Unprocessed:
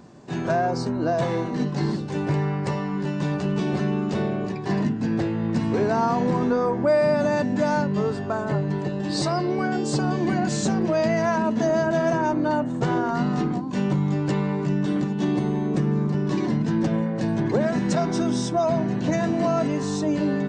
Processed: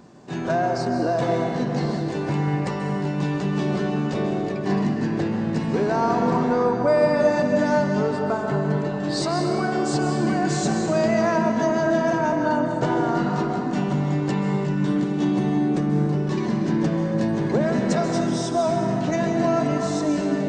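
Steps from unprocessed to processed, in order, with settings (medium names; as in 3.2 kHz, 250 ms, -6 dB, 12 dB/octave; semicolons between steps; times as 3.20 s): peaking EQ 85 Hz -4 dB 1.5 oct; on a send: reverberation RT60 3.0 s, pre-delay 123 ms, DRR 3 dB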